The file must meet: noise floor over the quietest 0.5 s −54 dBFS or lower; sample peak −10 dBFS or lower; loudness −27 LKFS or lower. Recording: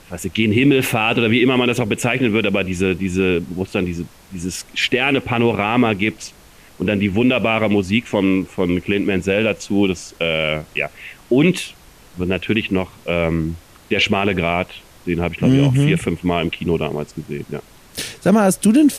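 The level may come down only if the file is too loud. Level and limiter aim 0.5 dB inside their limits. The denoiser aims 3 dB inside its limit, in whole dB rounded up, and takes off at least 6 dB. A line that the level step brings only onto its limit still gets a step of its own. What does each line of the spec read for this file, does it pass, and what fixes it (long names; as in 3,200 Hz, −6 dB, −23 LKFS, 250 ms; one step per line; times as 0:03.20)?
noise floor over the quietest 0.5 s −45 dBFS: out of spec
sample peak −5.0 dBFS: out of spec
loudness −18.5 LKFS: out of spec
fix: broadband denoise 6 dB, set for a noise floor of −45 dBFS
level −9 dB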